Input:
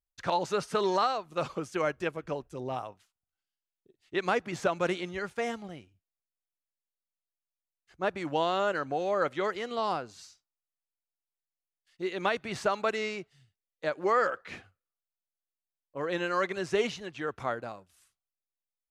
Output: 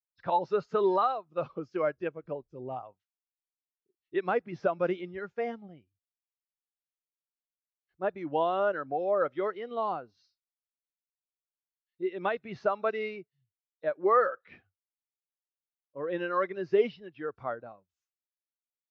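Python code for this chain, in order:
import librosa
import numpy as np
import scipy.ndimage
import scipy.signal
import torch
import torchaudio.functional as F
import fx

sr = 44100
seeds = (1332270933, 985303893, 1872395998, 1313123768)

y = fx.freq_compress(x, sr, knee_hz=3600.0, ratio=1.5)
y = scipy.signal.sosfilt(scipy.signal.butter(2, 6700.0, 'lowpass', fs=sr, output='sos'), y)
y = fx.spectral_expand(y, sr, expansion=1.5)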